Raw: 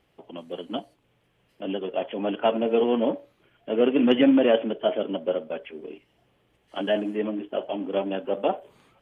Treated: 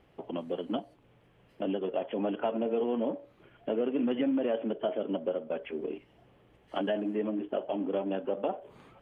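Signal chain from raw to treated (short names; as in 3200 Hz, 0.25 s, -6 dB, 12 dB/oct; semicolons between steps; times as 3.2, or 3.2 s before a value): high shelf 2700 Hz -11.5 dB; in parallel at -1 dB: limiter -17 dBFS, peak gain reduction 9 dB; on the sum: compressor 3:1, threshold -31 dBFS, peak gain reduction 14.5 dB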